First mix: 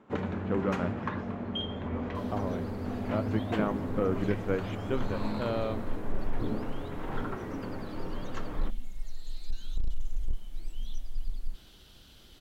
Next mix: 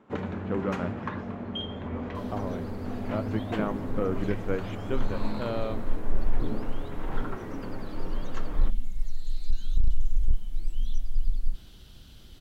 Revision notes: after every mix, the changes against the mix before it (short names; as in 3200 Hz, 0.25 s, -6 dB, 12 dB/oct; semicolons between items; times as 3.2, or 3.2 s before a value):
second sound: add tone controls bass +8 dB, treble +1 dB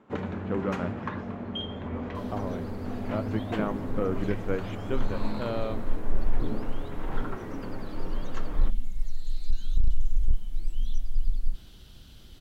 none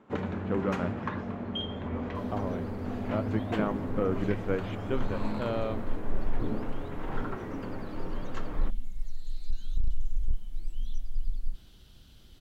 second sound -5.0 dB